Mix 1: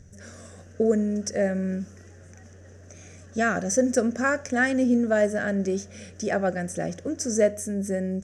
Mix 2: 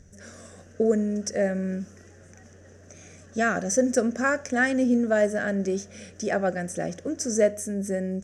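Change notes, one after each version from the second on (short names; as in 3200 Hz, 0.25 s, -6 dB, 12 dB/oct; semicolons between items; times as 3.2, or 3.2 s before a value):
speech: add bell 110 Hz -7 dB 0.75 oct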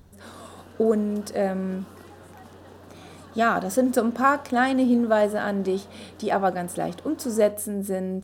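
background +4.5 dB; master: remove EQ curve 200 Hz 0 dB, 300 Hz -4 dB, 600 Hz +1 dB, 940 Hz -17 dB, 1800 Hz +5 dB, 4200 Hz -12 dB, 6000 Hz +14 dB, 13000 Hz -18 dB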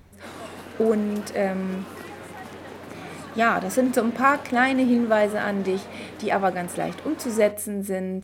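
background +7.5 dB; master: add bell 2200 Hz +12 dB 0.43 oct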